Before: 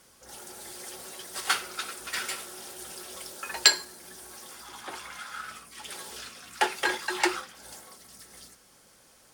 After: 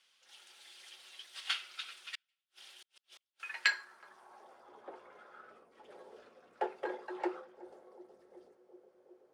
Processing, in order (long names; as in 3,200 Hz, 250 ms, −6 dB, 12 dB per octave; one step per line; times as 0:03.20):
feedback echo with a band-pass in the loop 370 ms, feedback 82%, band-pass 400 Hz, level −18 dB
in parallel at −12 dB: sample-rate reduction 10,000 Hz, jitter 0%
0:02.15–0:03.40: on the sum: gate with flip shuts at −30 dBFS, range −42 dB
band-pass filter sweep 3,100 Hz → 500 Hz, 0:03.25–0:04.76
level −3 dB